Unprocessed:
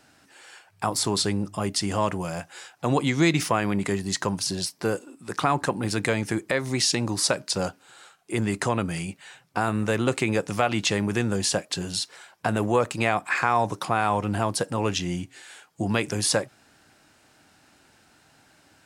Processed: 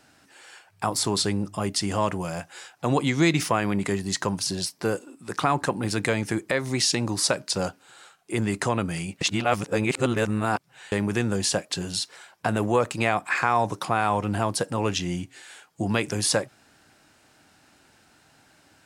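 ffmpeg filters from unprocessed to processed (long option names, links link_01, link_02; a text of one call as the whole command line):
ffmpeg -i in.wav -filter_complex "[0:a]asplit=3[link_01][link_02][link_03];[link_01]atrim=end=9.212[link_04];[link_02]atrim=start=9.208:end=10.922,asetpts=PTS-STARTPTS,areverse[link_05];[link_03]atrim=start=10.918[link_06];[link_04][link_05]acrossfade=duration=0.004:curve1=hsin:curve2=hsin[link_07];[link_07][link_06]acrossfade=duration=0.004:curve1=hsin:curve2=hsin" out.wav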